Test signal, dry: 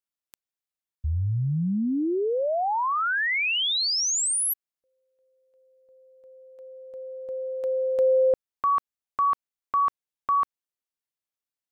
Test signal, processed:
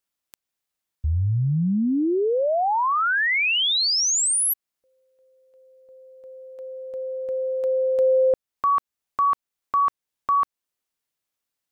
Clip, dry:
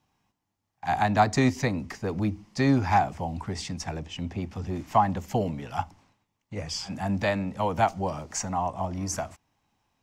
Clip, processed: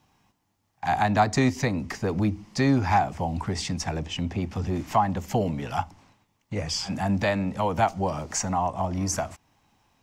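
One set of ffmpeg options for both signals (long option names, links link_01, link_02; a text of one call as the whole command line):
ffmpeg -i in.wav -af "acompressor=threshold=-35dB:ratio=1.5:attack=0.12:release=561:detection=peak,volume=8dB" out.wav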